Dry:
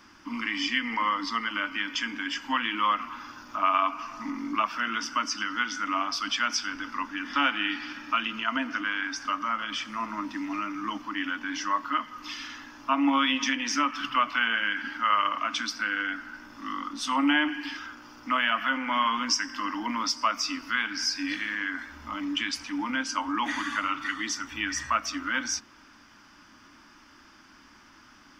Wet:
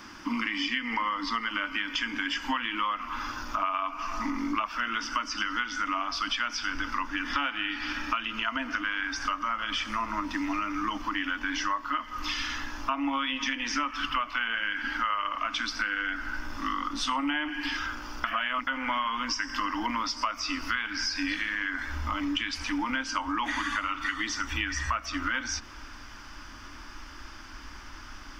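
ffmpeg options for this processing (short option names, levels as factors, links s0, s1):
-filter_complex "[0:a]asplit=3[s0][s1][s2];[s0]atrim=end=18.242[s3];[s1]atrim=start=18.238:end=18.672,asetpts=PTS-STARTPTS,areverse[s4];[s2]atrim=start=18.668[s5];[s3][s4]acrossfade=d=0.004:c1=hsin:c2=hsin[s6];[s6][s5]acrossfade=d=0.004:c1=hsin:c2=hsin,acrossover=split=4800[s7][s8];[s8]acompressor=threshold=0.00501:ratio=4:attack=1:release=60[s9];[s7][s9]amix=inputs=2:normalize=0,asubboost=boost=10.5:cutoff=53,acompressor=threshold=0.0178:ratio=6,volume=2.51"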